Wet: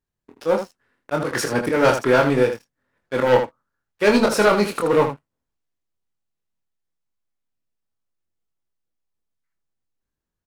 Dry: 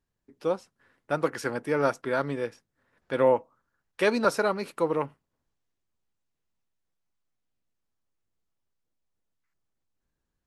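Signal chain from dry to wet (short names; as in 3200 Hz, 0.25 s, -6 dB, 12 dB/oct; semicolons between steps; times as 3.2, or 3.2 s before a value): auto swell 0.112 s; sample leveller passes 3; early reflections 24 ms -4.5 dB, 79 ms -8 dB; gain +1.5 dB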